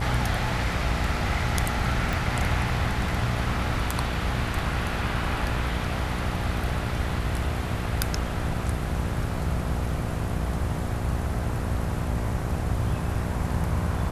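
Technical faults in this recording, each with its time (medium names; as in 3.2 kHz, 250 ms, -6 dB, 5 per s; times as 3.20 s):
buzz 60 Hz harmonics 12 -31 dBFS
2.13 s: pop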